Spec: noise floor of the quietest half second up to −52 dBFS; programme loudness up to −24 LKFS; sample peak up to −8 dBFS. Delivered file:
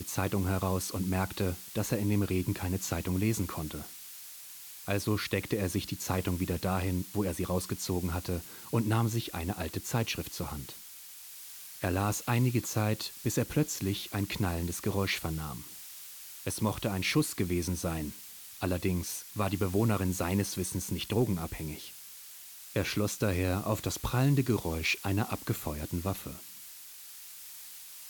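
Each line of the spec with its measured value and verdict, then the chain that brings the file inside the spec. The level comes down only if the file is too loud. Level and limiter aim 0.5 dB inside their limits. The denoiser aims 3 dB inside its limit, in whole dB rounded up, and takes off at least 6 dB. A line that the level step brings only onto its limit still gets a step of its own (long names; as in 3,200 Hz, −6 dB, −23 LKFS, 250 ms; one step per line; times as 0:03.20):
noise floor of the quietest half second −48 dBFS: out of spec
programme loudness −32.0 LKFS: in spec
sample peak −15.0 dBFS: in spec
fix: broadband denoise 7 dB, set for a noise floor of −48 dBFS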